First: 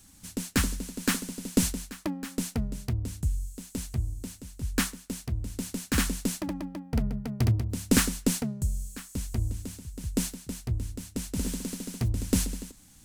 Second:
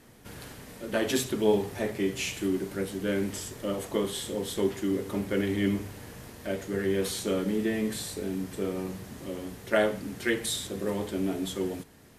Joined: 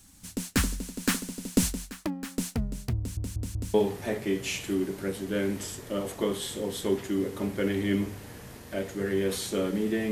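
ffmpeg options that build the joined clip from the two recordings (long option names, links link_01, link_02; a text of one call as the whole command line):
ffmpeg -i cue0.wav -i cue1.wav -filter_complex "[0:a]apad=whole_dur=10.11,atrim=end=10.11,asplit=4[link_01][link_02][link_03][link_04];[link_01]atrim=end=3.172[link_05];[link_02]atrim=start=2.978:end=3.172[link_06];[link_03]atrim=start=2.978:end=3.172[link_07];[link_04]atrim=start=2.978:end=3.172[link_08];[1:a]atrim=start=1.468:end=7.84[link_09];[link_05][link_06]acrossfade=duration=0.004:curve1=hsin:curve2=hsin[link_10];[link_10][link_07]acrossfade=duration=0.004:curve1=hsin:curve2=hsin[link_11];[link_11][link_08]acrossfade=duration=0.004:curve1=hsin:curve2=hsin[link_12];[link_12][link_09]acrossfade=duration=0.004:curve1=hsin:curve2=hsin" out.wav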